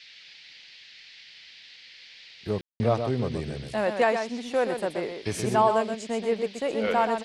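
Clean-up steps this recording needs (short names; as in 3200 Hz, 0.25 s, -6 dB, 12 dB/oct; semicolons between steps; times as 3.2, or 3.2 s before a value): room tone fill 2.61–2.8; noise print and reduce 22 dB; inverse comb 0.126 s -7 dB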